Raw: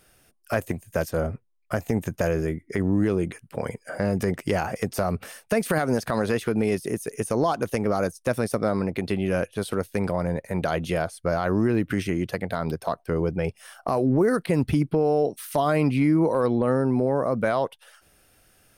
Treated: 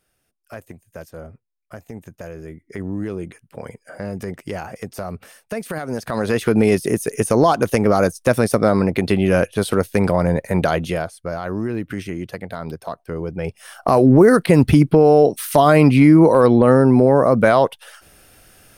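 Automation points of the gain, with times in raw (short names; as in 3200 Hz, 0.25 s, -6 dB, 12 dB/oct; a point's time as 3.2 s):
2.36 s -10.5 dB
2.79 s -4 dB
5.83 s -4 dB
6.52 s +8.5 dB
10.6 s +8.5 dB
11.24 s -2 dB
13.27 s -2 dB
13.94 s +10 dB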